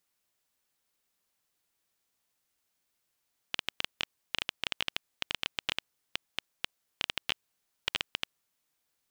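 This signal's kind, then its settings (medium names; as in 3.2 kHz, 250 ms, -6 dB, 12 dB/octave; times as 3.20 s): random clicks 9.5 per s -11 dBFS 4.78 s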